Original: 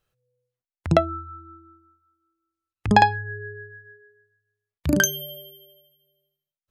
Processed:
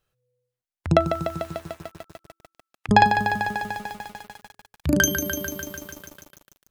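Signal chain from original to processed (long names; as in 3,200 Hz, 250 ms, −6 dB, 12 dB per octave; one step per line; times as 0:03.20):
0:01.07–0:02.89: high-pass filter 670 Hz 12 dB per octave
feedback echo at a low word length 148 ms, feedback 80%, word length 7 bits, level −8 dB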